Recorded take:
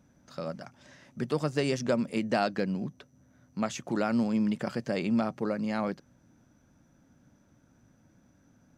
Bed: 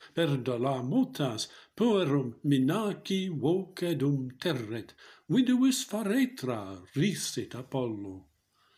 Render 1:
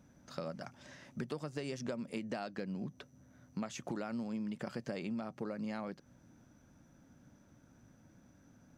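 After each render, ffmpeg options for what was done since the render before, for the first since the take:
-af "acompressor=threshold=0.0158:ratio=12"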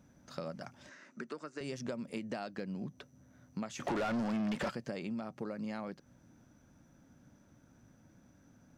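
-filter_complex "[0:a]asettb=1/sr,asplit=3[s0][s1][s2];[s0]atrim=end=0.894[s3];[s1]atrim=start=0.89:end=1.61,asetpts=PTS-STARTPTS,afade=t=in:d=0.004:c=qsin,afade=t=out:st=0.716:d=0.004:c=qsin,highpass=f=230:w=0.5412,highpass=f=230:w=1.3066,equalizer=f=270:t=q:w=4:g=-3,equalizer=f=520:t=q:w=4:g=-5,equalizer=f=780:t=q:w=4:g=-9,equalizer=f=1400:t=q:w=4:g=7,equalizer=f=3300:t=q:w=4:g=-9,equalizer=f=5100:t=q:w=4:g=-4,lowpass=f=7800:w=0.5412,lowpass=f=7800:w=1.3066[s4];[s2]atrim=start=1.606[s5];[s3][s4]acrossfade=d=0.004:c1=hsin:c2=qsin[s6];[s6][s5]acrossfade=d=0.004:c1=qsin:c2=hsin,asplit=3[s7][s8][s9];[s7]afade=t=out:st=3.79:d=0.02[s10];[s8]asplit=2[s11][s12];[s12]highpass=f=720:p=1,volume=28.2,asoftclip=type=tanh:threshold=0.0473[s13];[s11][s13]amix=inputs=2:normalize=0,lowpass=f=2900:p=1,volume=0.501,afade=t=in:st=3.79:d=0.02,afade=t=out:st=4.69:d=0.02[s14];[s9]afade=t=in:st=4.69:d=0.02[s15];[s10][s14][s15]amix=inputs=3:normalize=0"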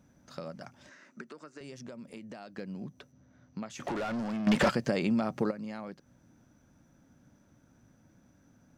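-filter_complex "[0:a]asettb=1/sr,asplit=3[s0][s1][s2];[s0]atrim=end=1.214[s3];[s1]atrim=start=1.21:end=2.56,asetpts=PTS-STARTPTS,afade=t=in:d=0.004:c=qsin,afade=t=out:st=1.346:d=0.004:c=qsin,acompressor=threshold=0.00562:ratio=2:attack=3.2:release=140:knee=1:detection=peak[s4];[s2]atrim=start=2.556[s5];[s3][s4]acrossfade=d=0.004:c1=hsin:c2=qsin[s6];[s6][s5]acrossfade=d=0.004:c1=qsin:c2=hsin,asettb=1/sr,asplit=3[s7][s8][s9];[s7]atrim=end=3.124[s10];[s8]atrim=start=3.12:end=3.7,asetpts=PTS-STARTPTS,afade=t=in:d=0.004:c=qsin,afade=t=out:st=0.576:d=0.004:c=qsin,lowpass=f=6000:w=0.5412,lowpass=f=6000:w=1.3066[s11];[s9]atrim=start=3.696[s12];[s10][s11]acrossfade=d=0.004:c1=hsin:c2=qsin[s13];[s13][s12]acrossfade=d=0.004:c1=qsin:c2=hsin,asplit=3[s14][s15][s16];[s14]atrim=end=4.472[s17];[s15]atrim=start=4.468:end=5.512,asetpts=PTS-STARTPTS,volume=3.55[s18];[s16]atrim=start=5.508[s19];[s17][s18]acrossfade=d=0.004:c1=hsin:c2=hsin[s20];[s20][s19]acrossfade=d=0.004:c1=hsin:c2=hsin"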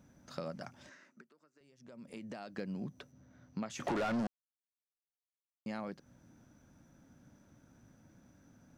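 -filter_complex "[0:a]asplit=5[s0][s1][s2][s3][s4];[s0]atrim=end=1.27,asetpts=PTS-STARTPTS,afade=t=out:st=0.8:d=0.47:silence=0.1[s5];[s1]atrim=start=1.27:end=1.77,asetpts=PTS-STARTPTS,volume=0.1[s6];[s2]atrim=start=1.77:end=4.27,asetpts=PTS-STARTPTS,afade=t=in:d=0.47:silence=0.1,afade=t=out:st=2.496:d=0.004:c=hsin[s7];[s3]atrim=start=4.27:end=5.66,asetpts=PTS-STARTPTS,volume=0[s8];[s4]atrim=start=5.66,asetpts=PTS-STARTPTS,afade=t=in:d=0.004:c=hsin[s9];[s5][s6][s7][s8][s9]concat=n=5:v=0:a=1"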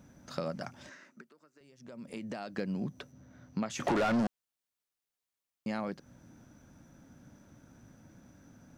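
-af "volume=1.88"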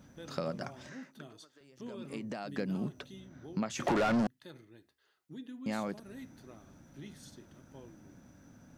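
-filter_complex "[1:a]volume=0.0891[s0];[0:a][s0]amix=inputs=2:normalize=0"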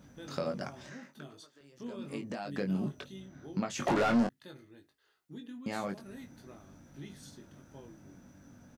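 -filter_complex "[0:a]asplit=2[s0][s1];[s1]adelay=21,volume=0.531[s2];[s0][s2]amix=inputs=2:normalize=0"

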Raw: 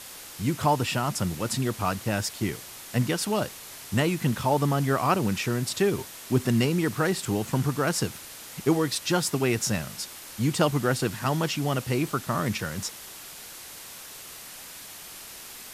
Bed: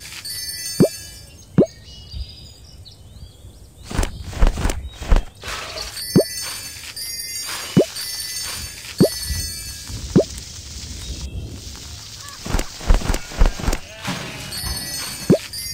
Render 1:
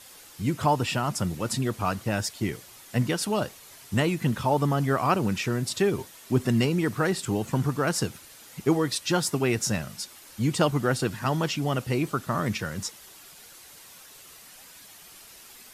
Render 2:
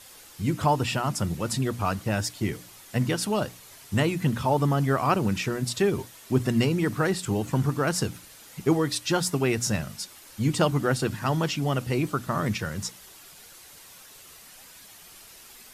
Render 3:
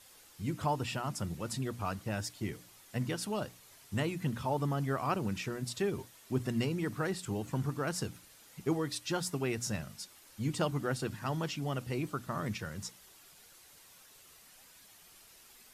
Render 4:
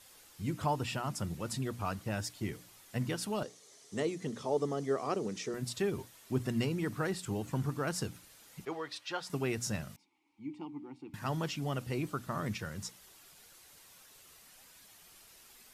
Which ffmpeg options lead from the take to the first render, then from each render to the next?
-af "afftdn=nr=8:nf=-43"
-af "lowshelf=f=110:g=5,bandreject=f=60:t=h:w=6,bandreject=f=120:t=h:w=6,bandreject=f=180:t=h:w=6,bandreject=f=240:t=h:w=6,bandreject=f=300:t=h:w=6"
-af "volume=0.335"
-filter_complex "[0:a]asettb=1/sr,asplit=3[s0][s1][s2];[s0]atrim=end=3.434[s3];[s1]atrim=start=3.43:end=5.54,asetpts=PTS-STARTPTS,afade=t=in:d=0.004:c=qsin,afade=t=out:st=2.106:d=0.004:c=qsin,highpass=230,equalizer=f=430:t=q:w=4:g=9,equalizer=f=940:t=q:w=4:g=-7,equalizer=f=1500:t=q:w=4:g=-8,equalizer=f=2600:t=q:w=4:g=-8,equalizer=f=6100:t=q:w=4:g=6,lowpass=f=9600:w=0.5412,lowpass=f=9600:w=1.3066[s4];[s2]atrim=start=5.536[s5];[s3][s4]acrossfade=d=0.004:c1=hsin:c2=qsin[s6];[s6][s5]acrossfade=d=0.004:c1=qsin:c2=hsin,asettb=1/sr,asplit=3[s7][s8][s9];[s7]atrim=end=8.654[s10];[s8]atrim=start=8.65:end=9.3,asetpts=PTS-STARTPTS,afade=t=in:d=0.004:c=qsin,afade=t=out:st=0.646:d=0.004:c=qsin,acrossover=split=460 4900:gain=0.126 1 0.158[s11][s12][s13];[s11][s12][s13]amix=inputs=3:normalize=0[s14];[s9]atrim=start=9.296[s15];[s10][s14]acrossfade=d=0.004:c1=hsin:c2=qsin[s16];[s16][s15]acrossfade=d=0.004:c1=qsin:c2=hsin,asettb=1/sr,asplit=3[s17][s18][s19];[s17]atrim=end=9.964[s20];[s18]atrim=start=9.96:end=11.14,asetpts=PTS-STARTPTS,afade=t=in:d=0.004:c=qsin,afade=t=out:st=1.176:d=0.004:c=qsin,asplit=3[s21][s22][s23];[s21]bandpass=f=300:t=q:w=8,volume=1[s24];[s22]bandpass=f=870:t=q:w=8,volume=0.501[s25];[s23]bandpass=f=2240:t=q:w=8,volume=0.355[s26];[s24][s25][s26]amix=inputs=3:normalize=0[s27];[s19]atrim=start=11.136[s28];[s20][s27]acrossfade=d=0.004:c1=hsin:c2=qsin[s29];[s29][s28]acrossfade=d=0.004:c1=qsin:c2=hsin"

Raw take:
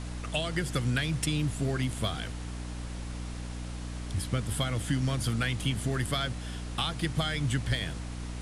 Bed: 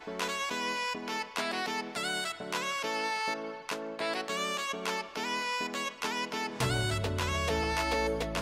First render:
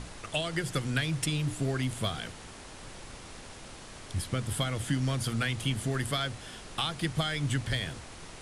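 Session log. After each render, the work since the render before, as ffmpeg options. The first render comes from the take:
-af "bandreject=f=60:t=h:w=6,bandreject=f=120:t=h:w=6,bandreject=f=180:t=h:w=6,bandreject=f=240:t=h:w=6,bandreject=f=300:t=h:w=6"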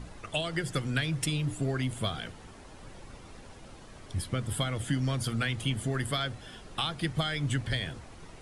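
-af "afftdn=nr=9:nf=-47"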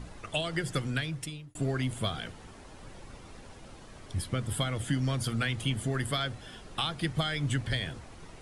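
-filter_complex "[0:a]asplit=2[s0][s1];[s0]atrim=end=1.55,asetpts=PTS-STARTPTS,afade=t=out:st=0.82:d=0.73[s2];[s1]atrim=start=1.55,asetpts=PTS-STARTPTS,afade=t=in:d=0.004:c=hsin[s3];[s2][s3]concat=n=2:v=0:a=1"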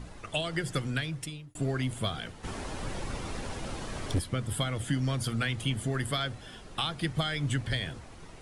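-filter_complex "[0:a]asplit=3[s0][s1][s2];[s0]afade=t=out:st=2.43:d=0.02[s3];[s1]aeval=exprs='0.0794*sin(PI/2*2.51*val(0)/0.0794)':c=same,afade=t=in:st=2.43:d=0.02,afade=t=out:st=4.18:d=0.02[s4];[s2]afade=t=in:st=4.18:d=0.02[s5];[s3][s4][s5]amix=inputs=3:normalize=0"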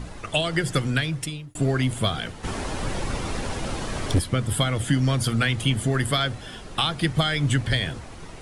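-af "volume=2.51"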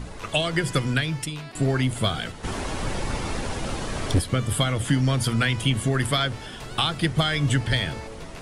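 -filter_complex "[1:a]volume=0.316[s0];[0:a][s0]amix=inputs=2:normalize=0"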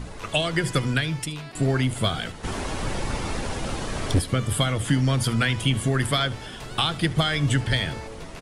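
-af "aecho=1:1:75:0.0891"

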